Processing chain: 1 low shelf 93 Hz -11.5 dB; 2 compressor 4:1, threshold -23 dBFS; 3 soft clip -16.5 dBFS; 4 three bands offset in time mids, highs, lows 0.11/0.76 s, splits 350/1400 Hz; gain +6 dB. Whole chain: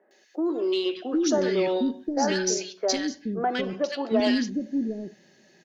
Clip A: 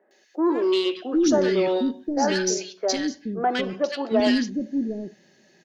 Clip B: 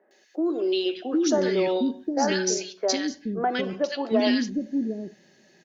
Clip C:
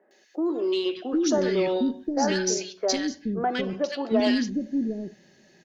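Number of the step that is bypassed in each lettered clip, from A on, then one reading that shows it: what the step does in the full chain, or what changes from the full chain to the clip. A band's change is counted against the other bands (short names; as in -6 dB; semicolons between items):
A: 2, mean gain reduction 2.0 dB; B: 3, distortion -25 dB; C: 1, 125 Hz band +2.0 dB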